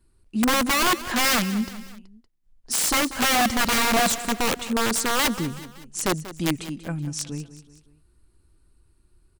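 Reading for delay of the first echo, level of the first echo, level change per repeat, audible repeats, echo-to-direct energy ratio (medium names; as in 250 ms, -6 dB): 188 ms, -15.0 dB, -6.0 dB, 3, -14.0 dB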